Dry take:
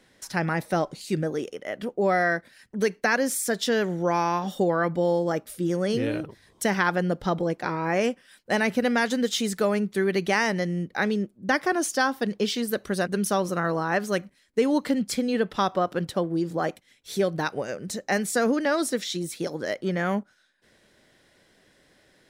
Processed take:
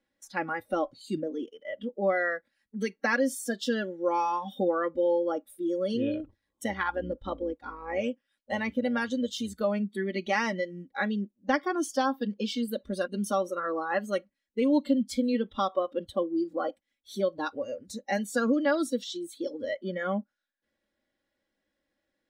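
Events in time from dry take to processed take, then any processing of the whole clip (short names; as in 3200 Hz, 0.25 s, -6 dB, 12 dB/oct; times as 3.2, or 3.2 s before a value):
6.22–9.61 AM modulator 110 Hz, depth 40%
whole clip: spectral noise reduction 17 dB; high shelf 4900 Hz -8.5 dB; comb 3.6 ms, depth 67%; gain -4.5 dB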